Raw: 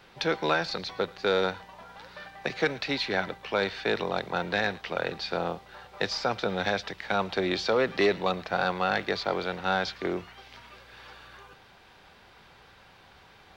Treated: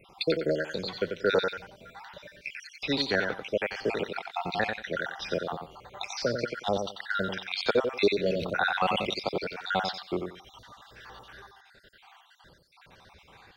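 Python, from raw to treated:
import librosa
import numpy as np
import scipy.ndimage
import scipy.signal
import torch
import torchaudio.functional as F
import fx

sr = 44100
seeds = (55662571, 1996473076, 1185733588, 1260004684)

y = fx.spec_dropout(x, sr, seeds[0], share_pct=66)
y = fx.echo_feedback(y, sr, ms=91, feedback_pct=19, wet_db=-6.0)
y = fx.sustainer(y, sr, db_per_s=45.0, at=(8.26, 9.14))
y = F.gain(torch.from_numpy(y), 2.5).numpy()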